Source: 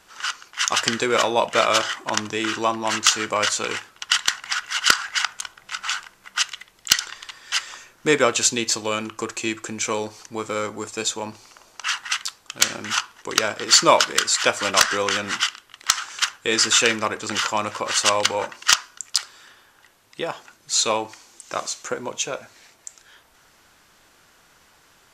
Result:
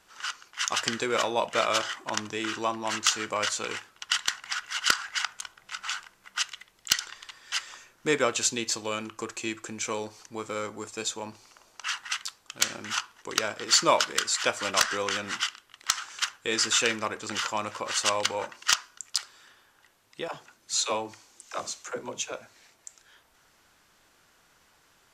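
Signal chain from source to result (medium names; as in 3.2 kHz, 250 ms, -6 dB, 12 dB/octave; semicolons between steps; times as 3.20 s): 20.28–22.32 s: phase dispersion lows, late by 71 ms, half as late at 310 Hz; trim -7 dB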